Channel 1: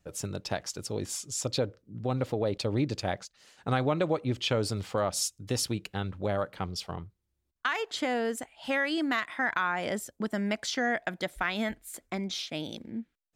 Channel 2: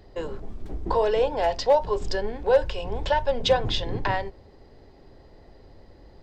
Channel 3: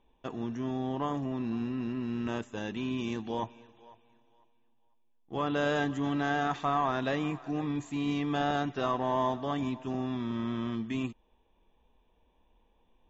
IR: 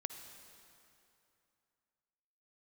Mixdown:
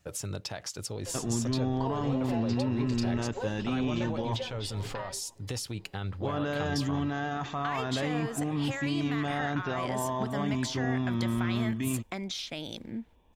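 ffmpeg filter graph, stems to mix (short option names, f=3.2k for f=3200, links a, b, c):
-filter_complex "[0:a]acontrast=54,alimiter=limit=-19.5dB:level=0:latency=1:release=22,volume=-0.5dB[a];[1:a]aecho=1:1:7.3:0.65,adelay=900,volume=-8.5dB[b];[2:a]alimiter=level_in=4dB:limit=-24dB:level=0:latency=1,volume=-4dB,adelay=900,volume=3dB[c];[a][b]amix=inputs=2:normalize=0,lowshelf=f=370:g=-9,acompressor=threshold=-34dB:ratio=6,volume=0dB[d];[c][d]amix=inputs=2:normalize=0,equalizer=f=100:w=1.1:g=9"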